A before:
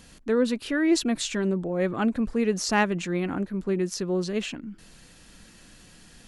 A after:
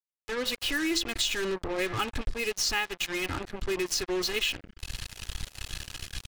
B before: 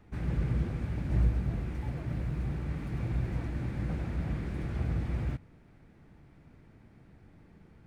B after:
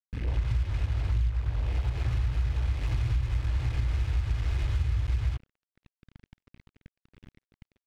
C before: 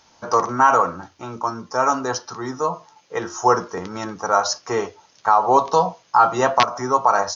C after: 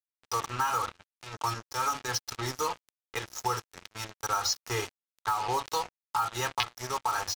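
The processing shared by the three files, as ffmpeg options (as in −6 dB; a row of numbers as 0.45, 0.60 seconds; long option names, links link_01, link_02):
-af "bandreject=frequency=770:width=12,aecho=1:1:2.4:0.64,bandreject=frequency=170.2:width_type=h:width=4,bandreject=frequency=340.4:width_type=h:width=4,bandreject=frequency=510.6:width_type=h:width=4,bandreject=frequency=680.8:width_type=h:width=4,bandreject=frequency=851:width_type=h:width=4,bandreject=frequency=1021.2:width_type=h:width=4,bandreject=frequency=1191.4:width_type=h:width=4,bandreject=frequency=1361.6:width_type=h:width=4,bandreject=frequency=1531.8:width_type=h:width=4,bandreject=frequency=1702:width_type=h:width=4,bandreject=frequency=1872.2:width_type=h:width=4,bandreject=frequency=2042.4:width_type=h:width=4,dynaudnorm=framelen=250:gausssize=3:maxgain=16dB,firequalizer=gain_entry='entry(110,0);entry(170,-21);entry(290,-15);entry(460,-19);entry(880,-13);entry(2800,0);entry(8400,-10)':delay=0.05:min_phase=1,acrusher=bits=4:mix=0:aa=0.5,acompressor=threshold=-23dB:ratio=6,volume=-1.5dB"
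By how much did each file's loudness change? −4.5, +4.0, −12.0 LU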